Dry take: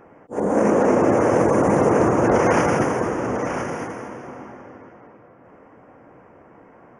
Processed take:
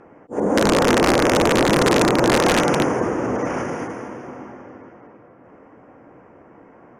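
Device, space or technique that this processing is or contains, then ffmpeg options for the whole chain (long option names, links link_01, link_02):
overflowing digital effects unit: -filter_complex "[0:a]asettb=1/sr,asplit=3[link_01][link_02][link_03];[link_01]atrim=end=1.684[link_04];[link_02]atrim=start=1.68:end=2.86,asetpts=PTS-STARTPTS,afade=type=in:duration=0.004:curve=qsin,afade=type=out:start_time=1.176:duration=0.004:curve=qsin,highpass=frequency=110:width=0.5412,highpass=frequency=110:width=1.3066[link_05];[link_03]atrim=start=2.856[link_06];[link_04][link_05]acrossfade=duration=0.004:curve1=hsin:curve2=qsin[link_07];[link_07][link_06]acrossfade=duration=0.004:curve1=qsin:curve2=hsin,aeval=exprs='(mod(2.99*val(0)+1,2)-1)/2.99':channel_layout=same,lowpass=9300,equalizer=frequency=300:width_type=o:width=1:gain=3"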